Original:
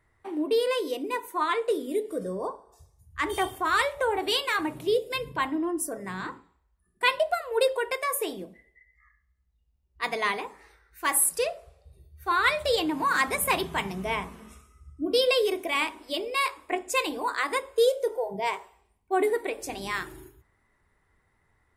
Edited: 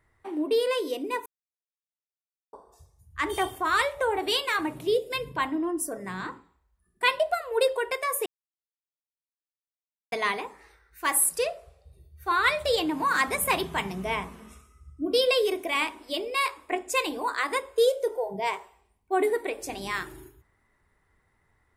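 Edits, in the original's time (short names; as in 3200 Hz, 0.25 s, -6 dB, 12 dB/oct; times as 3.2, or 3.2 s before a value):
1.26–2.53 mute
8.26–10.12 mute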